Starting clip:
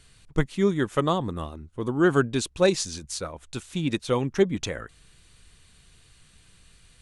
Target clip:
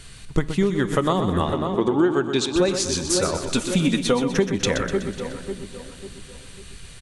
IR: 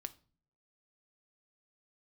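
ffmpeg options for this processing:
-filter_complex "[0:a]asettb=1/sr,asplit=3[a][b][c];[a]atrim=end=1.404[d];[b]atrim=start=1.4:end=2.54,asetpts=PTS-STARTPTS,afade=t=in:d=0.004:c=qsin,afade=t=out:st=1.136:d=0.004:c=qsin,highpass=160,equalizer=f=350:t=q:w=4:g=6,equalizer=f=870:t=q:w=4:g=8,equalizer=f=2.2k:t=q:w=4:g=4,equalizer=f=3.6k:t=q:w=4:g=6,lowpass=f=7.7k:w=0.5412,lowpass=f=7.7k:w=1.3066[e];[c]atrim=start=2.536[f];[d][e]acrossfade=d=0.004:c1=hsin:c2=qsin[g];[g][f]acrossfade=d=0.004:c1=qsin:c2=hsin,asettb=1/sr,asplit=3[h][i][j];[h]atrim=end=3.454[k];[i]atrim=start=3.45:end=4.32,asetpts=PTS-STARTPTS,afade=t=in:d=0.004:c=qsin,afade=t=out:st=0.866:d=0.004:c=qsin,aecho=1:1:4.2:0.68,atrim=end_sample=38367[l];[j]atrim=start=4.316[m];[k][l]acrossfade=d=0.004:c1=hsin:c2=qsin[n];[n][m]acrossfade=d=0.004:c1=qsin:c2=hsin,asplit=2[o][p];[p]adelay=546,lowpass=f=2k:p=1,volume=-15.5dB,asplit=2[q][r];[r]adelay=546,lowpass=f=2k:p=1,volume=0.4,asplit=2[s][t];[t]adelay=546,lowpass=f=2k:p=1,volume=0.4,asplit=2[u][v];[v]adelay=546,lowpass=f=2k:p=1,volume=0.4[w];[o][q][s][u][w]amix=inputs=5:normalize=0,asplit=2[x][y];[1:a]atrim=start_sample=2205[z];[y][z]afir=irnorm=-1:irlink=0,volume=3.5dB[aa];[x][aa]amix=inputs=2:normalize=0,acompressor=threshold=-23dB:ratio=16,asplit=2[ab][ac];[ac]aecho=0:1:124|248|372|496|620|744:0.355|0.185|0.0959|0.0499|0.0259|0.0135[ad];[ab][ad]amix=inputs=2:normalize=0,volume=6.5dB"

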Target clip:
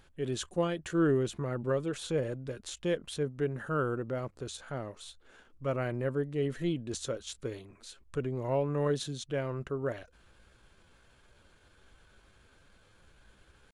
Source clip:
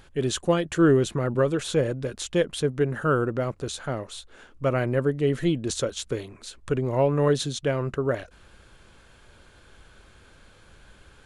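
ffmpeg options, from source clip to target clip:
-af "atempo=0.82,volume=-8.5dB"

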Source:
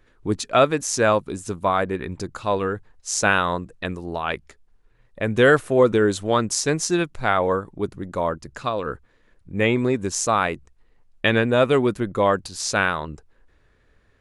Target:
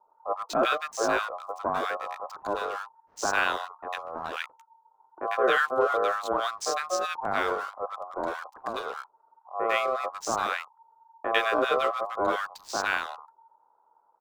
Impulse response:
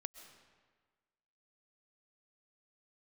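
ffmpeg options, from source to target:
-filter_complex "[0:a]lowpass=5.6k,lowshelf=f=370:g=3.5,acrossover=split=590[a][b];[a]aeval=exprs='val(0)*sin(2*PI*910*n/s)':c=same[c];[b]aeval=exprs='sgn(val(0))*max(abs(val(0))-0.0106,0)':c=same[d];[c][d]amix=inputs=2:normalize=0,acrossover=split=1200[e][f];[f]adelay=100[g];[e][g]amix=inputs=2:normalize=0,volume=-3.5dB"

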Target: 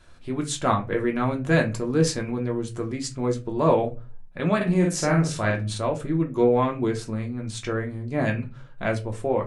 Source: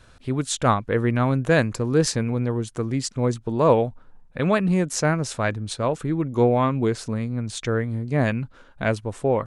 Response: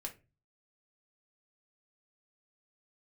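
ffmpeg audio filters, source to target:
-filter_complex "[0:a]asettb=1/sr,asplit=3[a][b][c];[a]atrim=end=4.564[d];[b]atrim=start=4.56:end=5.78,asetpts=PTS-STARTPTS,afade=t=in:d=0.004:c=qsin,afade=t=out:st=1.216:d=0.004:c=qsin,asplit=2[e][f];[f]adelay=48,volume=-3dB[g];[e][g]amix=inputs=2:normalize=0,atrim=end_sample=53802[h];[c]atrim=start=5.776[i];[d][h]acrossfade=d=0.004:c1=hsin:c2=qsin[j];[j][i]acrossfade=d=0.004:c1=qsin:c2=hsin[k];[1:a]atrim=start_sample=2205[l];[k][l]afir=irnorm=-1:irlink=0"

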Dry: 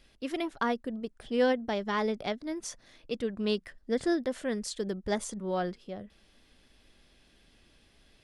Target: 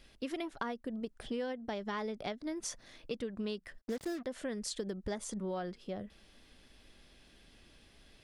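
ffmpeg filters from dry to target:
-filter_complex "[0:a]acompressor=threshold=-36dB:ratio=10,asplit=3[a][b][c];[a]afade=t=out:st=3.8:d=0.02[d];[b]acrusher=bits=7:mix=0:aa=0.5,afade=t=in:st=3.8:d=0.02,afade=t=out:st=4.23:d=0.02[e];[c]afade=t=in:st=4.23:d=0.02[f];[d][e][f]amix=inputs=3:normalize=0,volume=1.5dB"

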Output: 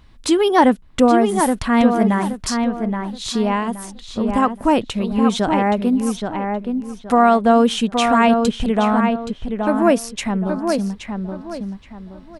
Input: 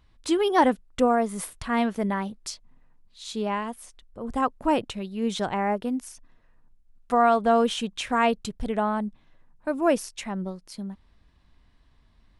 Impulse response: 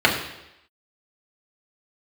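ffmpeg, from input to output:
-filter_complex "[0:a]equalizer=f=230:t=o:w=0.56:g=4.5,asplit=2[a][b];[b]acompressor=threshold=-34dB:ratio=6,volume=1.5dB[c];[a][c]amix=inputs=2:normalize=0,asplit=2[d][e];[e]adelay=823,lowpass=f=2.7k:p=1,volume=-5dB,asplit=2[f][g];[g]adelay=823,lowpass=f=2.7k:p=1,volume=0.31,asplit=2[h][i];[i]adelay=823,lowpass=f=2.7k:p=1,volume=0.31,asplit=2[j][k];[k]adelay=823,lowpass=f=2.7k:p=1,volume=0.31[l];[d][f][h][j][l]amix=inputs=5:normalize=0,volume=4.5dB"

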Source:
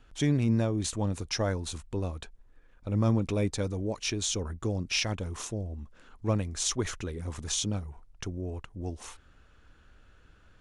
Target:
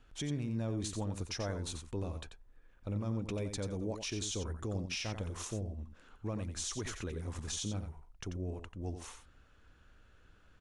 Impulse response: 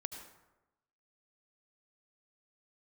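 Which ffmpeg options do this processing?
-filter_complex "[0:a]alimiter=level_in=0.5dB:limit=-24dB:level=0:latency=1:release=81,volume=-0.5dB,asplit=2[a][b];[b]aecho=0:1:89:0.376[c];[a][c]amix=inputs=2:normalize=0,volume=-4.5dB"

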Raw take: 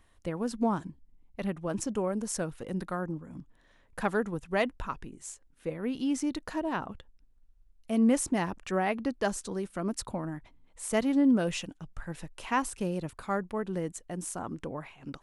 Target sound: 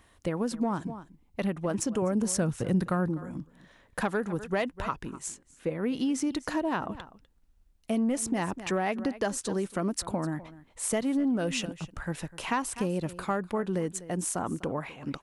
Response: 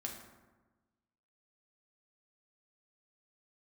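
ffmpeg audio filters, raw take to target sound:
-filter_complex "[0:a]highpass=f=67:p=1,aecho=1:1:249:0.106,asoftclip=type=tanh:threshold=-16.5dB,asettb=1/sr,asplit=3[a][b][c];[a]atrim=end=5.284[d];[b]atrim=start=5.28:end=5.86,asetpts=PTS-STARTPTS,afade=t=in:d=0.004:c=qsin,afade=t=out:st=0.576:d=0.004:c=qsin,highshelf=f=4.8k:g=-5[e];[c]atrim=start=5.856[f];[d][e]acrossfade=d=0.004:c1=hsin:c2=qsin[g];[g][f]acrossfade=d=0.004:c1=qsin:c2=hsin,acompressor=threshold=-32dB:ratio=5,asettb=1/sr,asplit=3[h][i][j];[h]atrim=end=2.024[k];[i]atrim=start=2.02:end=3.09,asetpts=PTS-STARTPTS,afade=t=in:d=0.004:c=qsin,afade=t=out:st=1.066:d=0.004:c=qsin,equalizer=f=110:t=o:w=1.3:g=12[l];[j]atrim=start=3.086[m];[k][l]acrossfade=d=0.004:c1=hsin:c2=qsin[n];[n][m]acrossfade=d=0.004:c1=qsin:c2=hsin,volume=6.5dB"

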